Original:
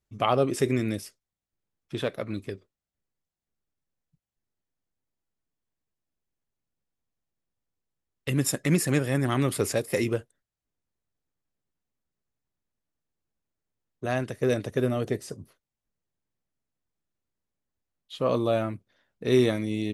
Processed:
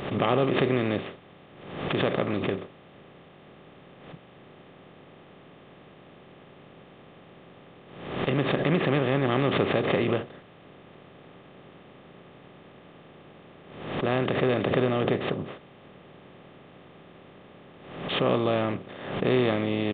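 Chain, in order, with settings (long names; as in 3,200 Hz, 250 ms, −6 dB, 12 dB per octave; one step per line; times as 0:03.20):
compressor on every frequency bin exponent 0.4
downsampling to 8,000 Hz
background raised ahead of every attack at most 63 dB per second
level −5 dB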